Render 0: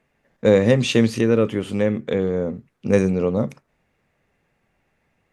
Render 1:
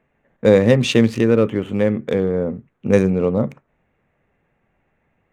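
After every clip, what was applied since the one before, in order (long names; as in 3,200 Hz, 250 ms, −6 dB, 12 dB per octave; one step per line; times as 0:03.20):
adaptive Wiener filter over 9 samples
level +2.5 dB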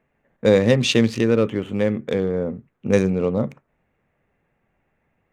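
dynamic equaliser 4,800 Hz, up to +6 dB, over −41 dBFS, Q 0.78
level −3 dB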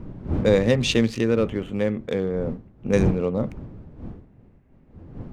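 wind on the microphone 190 Hz −29 dBFS
level −3 dB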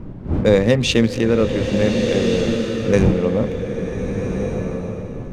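slow-attack reverb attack 1,480 ms, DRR 3.5 dB
level +4 dB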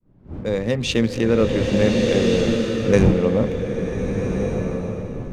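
fade in at the beginning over 1.51 s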